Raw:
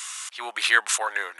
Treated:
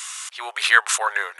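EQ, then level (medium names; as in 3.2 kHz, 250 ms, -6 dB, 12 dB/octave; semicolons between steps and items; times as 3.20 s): dynamic bell 1.2 kHz, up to +5 dB, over -31 dBFS, Q 1.6; brick-wall FIR high-pass 360 Hz; +2.0 dB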